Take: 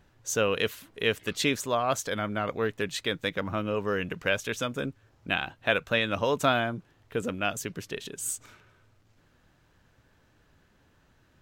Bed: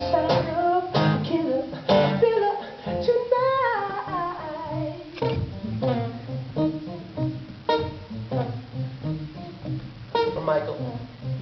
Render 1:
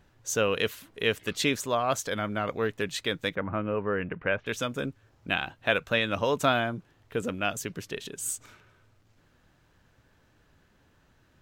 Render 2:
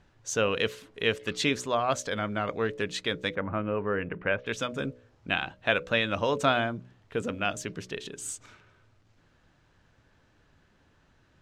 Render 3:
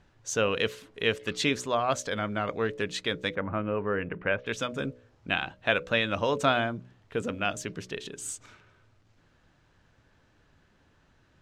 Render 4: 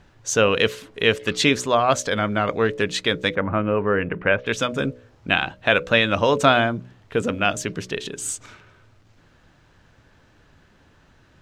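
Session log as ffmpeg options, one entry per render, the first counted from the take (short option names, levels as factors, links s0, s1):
-filter_complex "[0:a]asplit=3[s0][s1][s2];[s0]afade=t=out:st=3.34:d=0.02[s3];[s1]lowpass=f=2300:w=0.5412,lowpass=f=2300:w=1.3066,afade=t=in:st=3.34:d=0.02,afade=t=out:st=4.46:d=0.02[s4];[s2]afade=t=in:st=4.46:d=0.02[s5];[s3][s4][s5]amix=inputs=3:normalize=0"
-af "lowpass=7300,bandreject=f=61.87:t=h:w=4,bandreject=f=123.74:t=h:w=4,bandreject=f=185.61:t=h:w=4,bandreject=f=247.48:t=h:w=4,bandreject=f=309.35:t=h:w=4,bandreject=f=371.22:t=h:w=4,bandreject=f=433.09:t=h:w=4,bandreject=f=494.96:t=h:w=4,bandreject=f=556.83:t=h:w=4,bandreject=f=618.7:t=h:w=4"
-af anull
-af "volume=2.66,alimiter=limit=0.708:level=0:latency=1"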